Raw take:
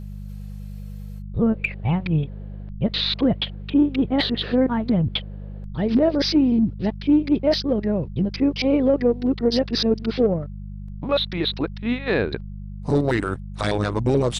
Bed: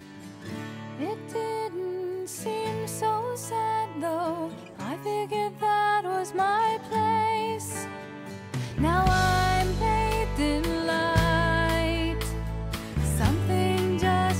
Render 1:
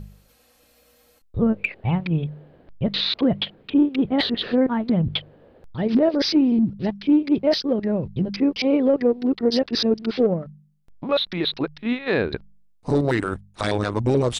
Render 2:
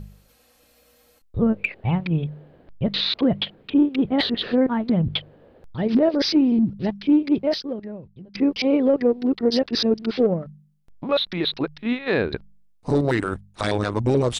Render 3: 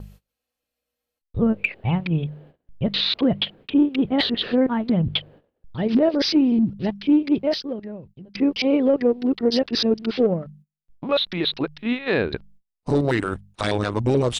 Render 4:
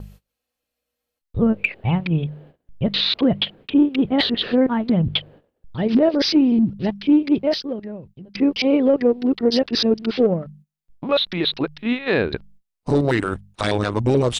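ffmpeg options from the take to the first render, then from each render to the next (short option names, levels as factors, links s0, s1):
-af "bandreject=f=50:t=h:w=4,bandreject=f=100:t=h:w=4,bandreject=f=150:t=h:w=4,bandreject=f=200:t=h:w=4"
-filter_complex "[0:a]asplit=2[s0][s1];[s0]atrim=end=8.35,asetpts=PTS-STARTPTS,afade=t=out:st=7.31:d=1.04:c=qua:silence=0.1[s2];[s1]atrim=start=8.35,asetpts=PTS-STARTPTS,afade=t=in:d=0.004:c=hsin:silence=0.1[s3];[s2][s3]concat=n=2:v=0:a=1"
-af "agate=range=0.0501:threshold=0.00447:ratio=16:detection=peak,equalizer=f=2900:t=o:w=0.49:g=3.5"
-af "volume=1.26"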